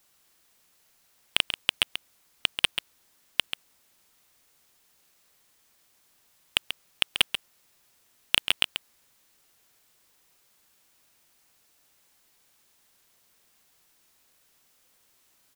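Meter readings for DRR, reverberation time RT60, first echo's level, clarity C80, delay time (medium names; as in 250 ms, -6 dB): no reverb, no reverb, -9.0 dB, no reverb, 137 ms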